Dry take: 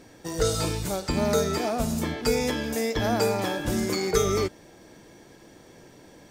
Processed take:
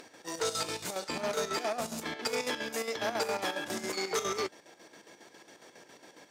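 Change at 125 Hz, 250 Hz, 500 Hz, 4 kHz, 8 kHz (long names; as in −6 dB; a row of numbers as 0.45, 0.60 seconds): −20.0, −13.0, −8.5, −3.5, −5.5 decibels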